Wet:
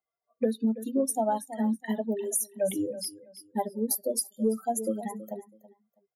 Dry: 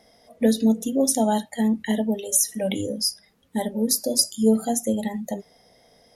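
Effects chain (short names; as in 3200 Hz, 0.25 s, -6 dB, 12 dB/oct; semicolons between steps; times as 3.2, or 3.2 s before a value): per-bin expansion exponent 2; HPF 280 Hz 12 dB/oct; feedback echo 0.326 s, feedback 21%, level -18 dB; compressor 6:1, threshold -29 dBFS, peak gain reduction 12.5 dB; band shelf 3700 Hz -12 dB 2.3 oct; gain +6 dB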